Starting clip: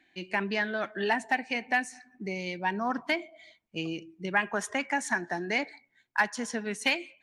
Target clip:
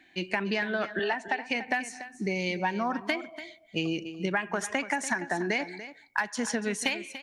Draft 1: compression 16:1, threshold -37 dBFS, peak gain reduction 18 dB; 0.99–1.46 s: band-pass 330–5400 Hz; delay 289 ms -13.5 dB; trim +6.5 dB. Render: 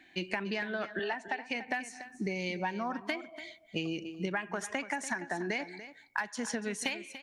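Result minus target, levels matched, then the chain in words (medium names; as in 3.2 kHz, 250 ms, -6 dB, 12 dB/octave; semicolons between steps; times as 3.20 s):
compression: peak gain reduction +5.5 dB
compression 16:1, threshold -31 dBFS, peak gain reduction 12.5 dB; 0.99–1.46 s: band-pass 330–5400 Hz; delay 289 ms -13.5 dB; trim +6.5 dB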